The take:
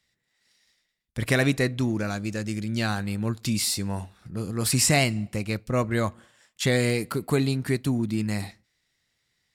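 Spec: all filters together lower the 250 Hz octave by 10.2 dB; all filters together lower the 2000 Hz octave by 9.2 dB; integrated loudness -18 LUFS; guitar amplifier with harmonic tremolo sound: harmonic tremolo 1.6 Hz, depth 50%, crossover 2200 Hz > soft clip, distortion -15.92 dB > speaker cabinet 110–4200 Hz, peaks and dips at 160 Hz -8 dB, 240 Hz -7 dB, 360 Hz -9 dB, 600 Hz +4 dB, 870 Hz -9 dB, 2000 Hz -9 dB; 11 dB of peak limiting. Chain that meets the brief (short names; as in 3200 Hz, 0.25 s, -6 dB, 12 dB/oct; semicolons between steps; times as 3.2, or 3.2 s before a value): bell 250 Hz -4.5 dB; bell 2000 Hz -6 dB; limiter -21 dBFS; harmonic tremolo 1.6 Hz, depth 50%, crossover 2200 Hz; soft clip -27 dBFS; speaker cabinet 110–4200 Hz, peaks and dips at 160 Hz -8 dB, 240 Hz -7 dB, 360 Hz -9 dB, 600 Hz +4 dB, 870 Hz -9 dB, 2000 Hz -9 dB; gain +22.5 dB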